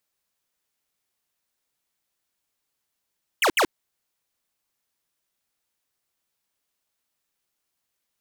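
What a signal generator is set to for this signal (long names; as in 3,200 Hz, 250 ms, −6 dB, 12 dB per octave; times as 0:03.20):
repeated falling chirps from 3,300 Hz, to 270 Hz, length 0.08 s square, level −19 dB, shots 2, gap 0.07 s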